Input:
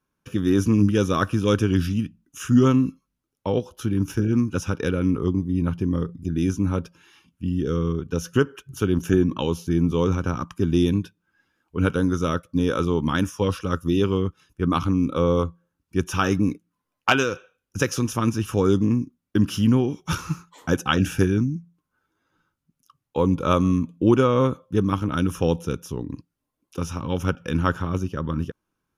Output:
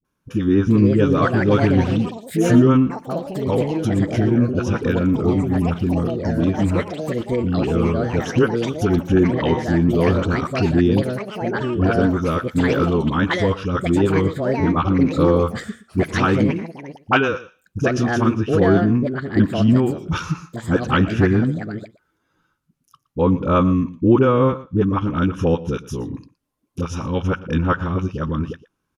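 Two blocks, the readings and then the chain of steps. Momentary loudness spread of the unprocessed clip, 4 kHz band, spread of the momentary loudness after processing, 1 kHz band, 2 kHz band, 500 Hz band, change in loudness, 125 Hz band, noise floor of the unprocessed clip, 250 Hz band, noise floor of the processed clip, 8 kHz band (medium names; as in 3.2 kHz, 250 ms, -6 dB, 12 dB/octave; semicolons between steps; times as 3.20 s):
10 LU, +0.5 dB, 11 LU, +4.5 dB, +5.0 dB, +5.0 dB, +4.0 dB, +4.0 dB, -81 dBFS, +4.5 dB, -70 dBFS, no reading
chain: phase dispersion highs, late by 48 ms, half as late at 480 Hz; low-pass that closes with the level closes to 2.4 kHz, closed at -18.5 dBFS; ever faster or slower copies 477 ms, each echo +5 st, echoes 3, each echo -6 dB; on a send: delay 117 ms -18.5 dB; on the sum: trim +3.5 dB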